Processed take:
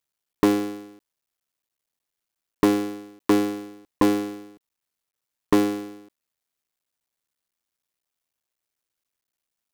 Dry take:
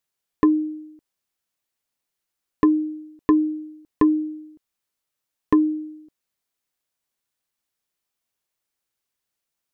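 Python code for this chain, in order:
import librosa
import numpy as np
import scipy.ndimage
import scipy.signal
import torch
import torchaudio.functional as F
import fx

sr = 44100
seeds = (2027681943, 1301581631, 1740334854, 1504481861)

y = fx.cycle_switch(x, sr, every=3, mode='muted')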